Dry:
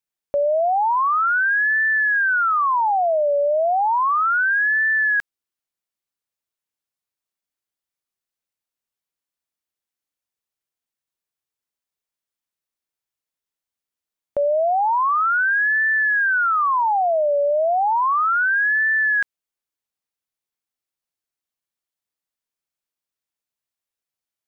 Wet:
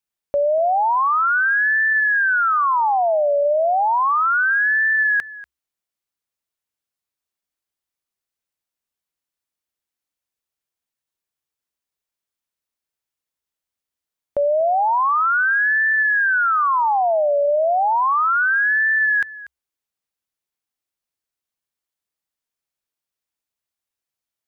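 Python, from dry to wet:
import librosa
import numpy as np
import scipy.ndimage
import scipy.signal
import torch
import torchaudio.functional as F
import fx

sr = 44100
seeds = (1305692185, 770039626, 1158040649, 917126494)

p1 = fx.peak_eq(x, sr, hz=65.0, db=8.0, octaves=0.22)
p2 = p1 + fx.echo_single(p1, sr, ms=240, db=-18.0, dry=0)
y = p2 * 10.0 ** (1.0 / 20.0)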